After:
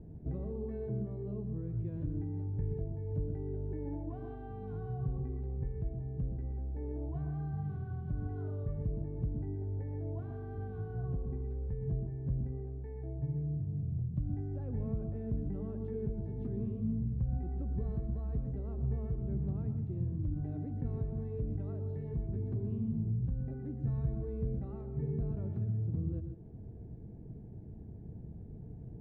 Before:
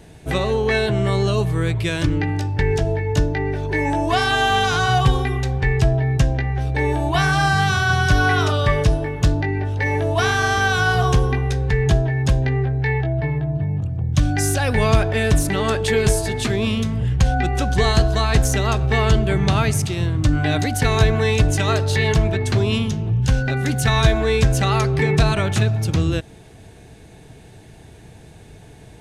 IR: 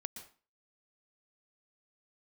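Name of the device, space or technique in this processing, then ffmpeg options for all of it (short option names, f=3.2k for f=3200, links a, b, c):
television next door: -filter_complex "[0:a]acompressor=threshold=-31dB:ratio=4,lowpass=300[a];[1:a]atrim=start_sample=2205[b];[a][b]afir=irnorm=-1:irlink=0"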